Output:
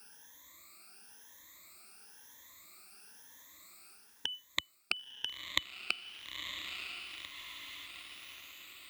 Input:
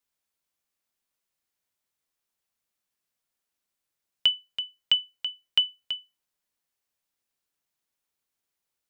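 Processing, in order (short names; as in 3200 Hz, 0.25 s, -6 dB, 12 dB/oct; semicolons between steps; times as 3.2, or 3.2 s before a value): moving spectral ripple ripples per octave 1.1, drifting +0.99 Hz, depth 21 dB; HPF 67 Hz; bell 570 Hz -8 dB 0.87 oct; reverse; compressor 16:1, threshold -28 dBFS, peak gain reduction 21.5 dB; reverse; bell 140 Hz -10 dB 0.63 oct; notch 3000 Hz, Q 6.5; diffused feedback echo 0.963 s, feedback 44%, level -9 dB; spectral freeze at 7.33, 0.53 s; three-band squash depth 40%; gain +15.5 dB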